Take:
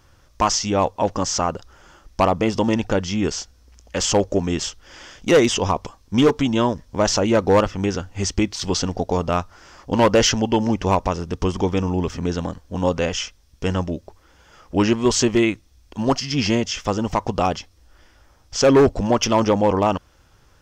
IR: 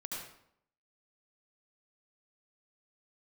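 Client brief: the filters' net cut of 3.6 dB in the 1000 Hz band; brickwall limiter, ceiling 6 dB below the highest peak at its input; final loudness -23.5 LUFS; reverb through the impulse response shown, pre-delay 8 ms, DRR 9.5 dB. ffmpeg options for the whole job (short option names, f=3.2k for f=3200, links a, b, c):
-filter_complex "[0:a]equalizer=f=1k:t=o:g=-4.5,alimiter=limit=-14dB:level=0:latency=1,asplit=2[a][b];[1:a]atrim=start_sample=2205,adelay=8[c];[b][c]afir=irnorm=-1:irlink=0,volume=-10dB[d];[a][d]amix=inputs=2:normalize=0,volume=1dB"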